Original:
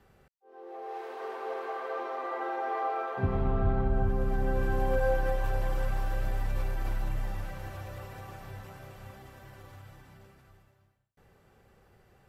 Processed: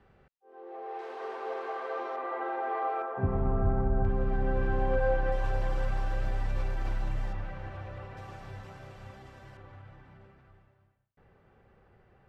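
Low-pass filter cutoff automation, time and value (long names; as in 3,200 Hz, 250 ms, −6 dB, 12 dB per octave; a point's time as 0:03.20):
3,200 Hz
from 0:00.99 7,000 Hz
from 0:02.16 3,000 Hz
from 0:03.02 1,500 Hz
from 0:04.05 3,300 Hz
from 0:05.32 6,100 Hz
from 0:07.33 2,900 Hz
from 0:08.17 6,200 Hz
from 0:09.57 2,500 Hz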